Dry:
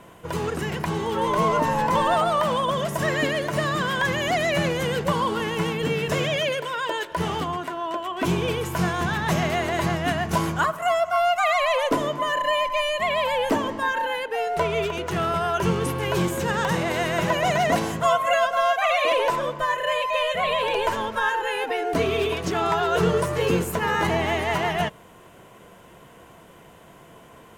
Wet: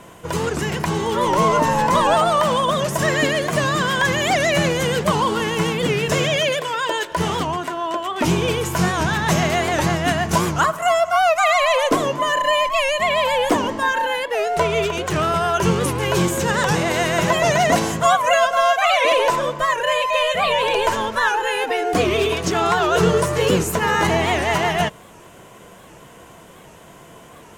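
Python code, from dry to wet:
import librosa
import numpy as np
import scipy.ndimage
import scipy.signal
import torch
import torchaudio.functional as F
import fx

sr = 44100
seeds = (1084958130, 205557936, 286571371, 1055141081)

y = fx.peak_eq(x, sr, hz=6800.0, db=5.5, octaves=1.2)
y = fx.record_warp(y, sr, rpm=78.0, depth_cents=160.0)
y = y * librosa.db_to_amplitude(4.5)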